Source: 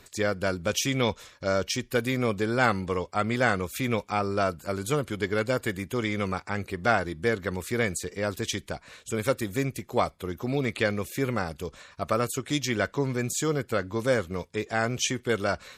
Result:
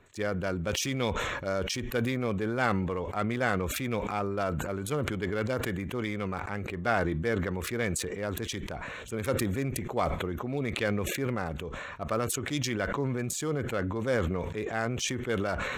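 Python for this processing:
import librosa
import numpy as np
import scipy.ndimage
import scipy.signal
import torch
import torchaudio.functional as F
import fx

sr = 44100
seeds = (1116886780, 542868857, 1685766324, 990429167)

y = fx.wiener(x, sr, points=9)
y = fx.sustainer(y, sr, db_per_s=22.0)
y = y * 10.0 ** (-5.0 / 20.0)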